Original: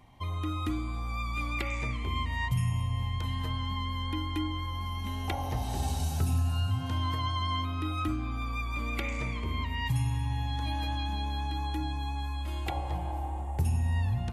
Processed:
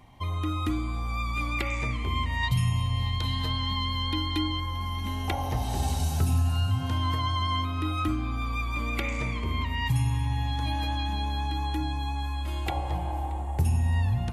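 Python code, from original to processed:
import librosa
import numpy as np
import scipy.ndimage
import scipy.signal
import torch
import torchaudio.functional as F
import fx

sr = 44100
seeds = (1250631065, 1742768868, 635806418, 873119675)

y = fx.peak_eq(x, sr, hz=4000.0, db=13.0, octaves=0.56, at=(2.43, 4.6))
y = fx.echo_feedback(y, sr, ms=627, feedback_pct=52, wet_db=-22.0)
y = y * 10.0 ** (3.5 / 20.0)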